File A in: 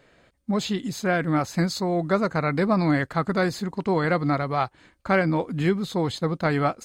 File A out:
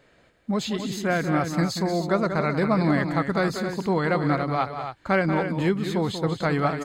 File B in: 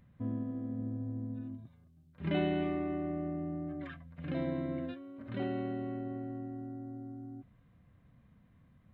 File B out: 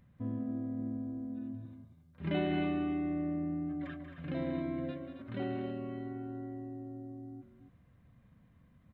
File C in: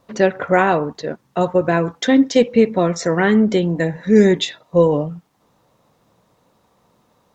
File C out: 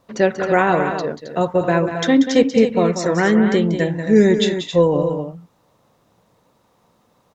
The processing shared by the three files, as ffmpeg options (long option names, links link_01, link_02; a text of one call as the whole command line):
ffmpeg -i in.wav -af "aecho=1:1:186.6|268.2:0.355|0.355,volume=-1dB" out.wav